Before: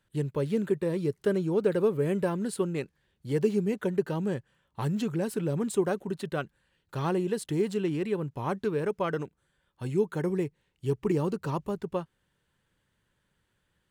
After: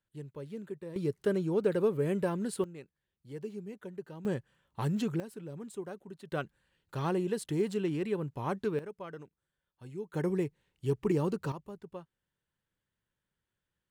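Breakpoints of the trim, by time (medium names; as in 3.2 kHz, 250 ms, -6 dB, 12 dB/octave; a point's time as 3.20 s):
-14 dB
from 0.96 s -3 dB
from 2.64 s -15 dB
from 4.25 s -2 dB
from 5.20 s -14 dB
from 6.32 s -3 dB
from 8.79 s -14 dB
from 10.14 s -2 dB
from 11.52 s -13 dB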